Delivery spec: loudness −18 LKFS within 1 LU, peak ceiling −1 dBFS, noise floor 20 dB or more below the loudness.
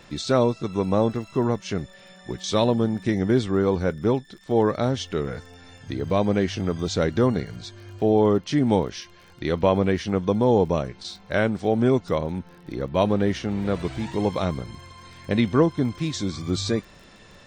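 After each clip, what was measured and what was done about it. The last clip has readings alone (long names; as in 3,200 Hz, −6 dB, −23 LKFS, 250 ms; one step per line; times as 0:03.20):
crackle rate 30 per second; integrated loudness −24.0 LKFS; sample peak −6.0 dBFS; target loudness −18.0 LKFS
→ click removal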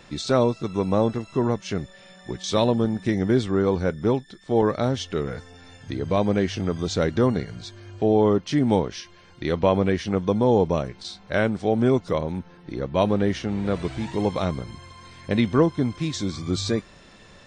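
crackle rate 0.11 per second; integrated loudness −24.0 LKFS; sample peak −6.0 dBFS; target loudness −18.0 LKFS
→ level +6 dB
brickwall limiter −1 dBFS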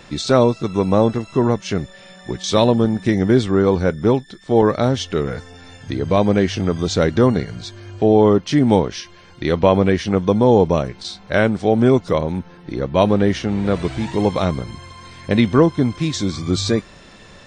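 integrated loudness −18.0 LKFS; sample peak −1.0 dBFS; background noise floor −44 dBFS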